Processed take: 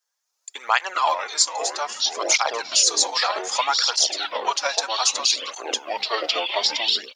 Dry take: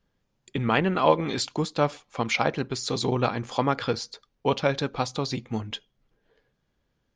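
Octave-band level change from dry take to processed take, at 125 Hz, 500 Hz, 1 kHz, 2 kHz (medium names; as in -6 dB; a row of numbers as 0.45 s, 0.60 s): under -35 dB, -2.5 dB, +4.5 dB, +6.0 dB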